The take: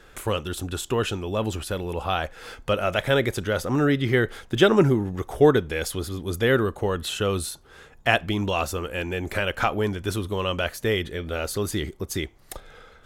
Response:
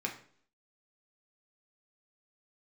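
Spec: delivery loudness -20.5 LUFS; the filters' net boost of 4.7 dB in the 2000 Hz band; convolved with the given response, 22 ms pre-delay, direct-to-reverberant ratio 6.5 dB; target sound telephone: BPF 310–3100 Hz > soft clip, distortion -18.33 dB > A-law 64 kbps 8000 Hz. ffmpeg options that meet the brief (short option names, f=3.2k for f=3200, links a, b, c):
-filter_complex "[0:a]equalizer=f=2k:t=o:g=7,asplit=2[a][b];[1:a]atrim=start_sample=2205,adelay=22[c];[b][c]afir=irnorm=-1:irlink=0,volume=-10dB[d];[a][d]amix=inputs=2:normalize=0,highpass=310,lowpass=3.1k,asoftclip=threshold=-9dB,volume=4.5dB" -ar 8000 -c:a pcm_alaw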